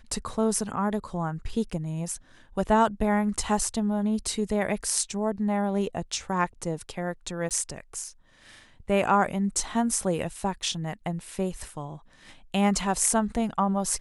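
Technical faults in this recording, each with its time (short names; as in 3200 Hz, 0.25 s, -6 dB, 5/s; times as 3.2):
7.49–7.51 gap 18 ms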